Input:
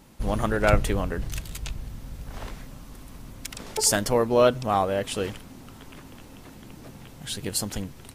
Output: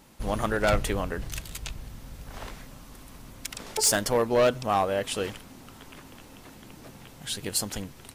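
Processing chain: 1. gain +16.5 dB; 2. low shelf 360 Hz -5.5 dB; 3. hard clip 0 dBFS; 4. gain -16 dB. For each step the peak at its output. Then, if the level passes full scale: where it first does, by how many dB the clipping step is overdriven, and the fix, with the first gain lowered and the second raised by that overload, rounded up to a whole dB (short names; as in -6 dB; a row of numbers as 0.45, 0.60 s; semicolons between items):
+10.5, +8.5, 0.0, -16.0 dBFS; step 1, 8.5 dB; step 1 +7.5 dB, step 4 -7 dB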